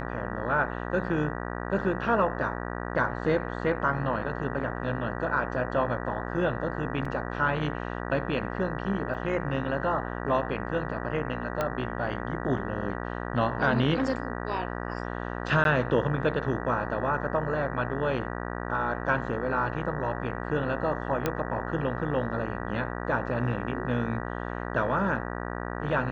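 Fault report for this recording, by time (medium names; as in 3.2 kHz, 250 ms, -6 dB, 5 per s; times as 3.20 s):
buzz 60 Hz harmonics 32 -34 dBFS
7.05 s: dropout 4.2 ms
9.14–9.15 s: dropout 5.9 ms
11.61 s: pop -14 dBFS
15.64–15.65 s: dropout 12 ms
21.26 s: pop -12 dBFS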